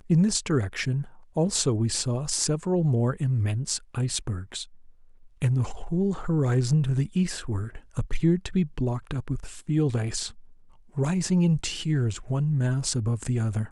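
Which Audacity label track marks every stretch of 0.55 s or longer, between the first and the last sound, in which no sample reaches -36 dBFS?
4.640000	5.420000	silence
10.300000	10.970000	silence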